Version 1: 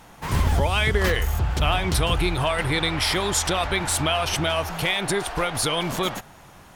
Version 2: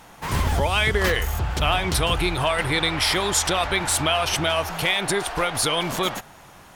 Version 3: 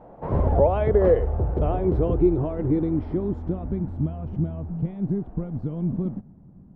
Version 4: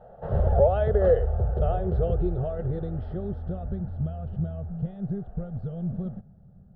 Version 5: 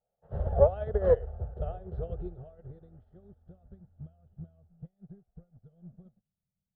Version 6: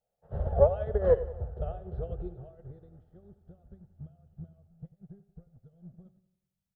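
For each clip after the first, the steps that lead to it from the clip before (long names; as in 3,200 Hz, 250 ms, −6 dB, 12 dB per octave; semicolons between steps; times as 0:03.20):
low-shelf EQ 290 Hz −4.5 dB; level +2 dB
low-pass filter sweep 570 Hz → 210 Hz, 0:00.92–0:04.01; level +1 dB
phaser with its sweep stopped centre 1,500 Hz, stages 8
harmonic generator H 2 −21 dB, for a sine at −7.5 dBFS; expander for the loud parts 2.5 to 1, over −40 dBFS
repeating echo 91 ms, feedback 52%, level −16 dB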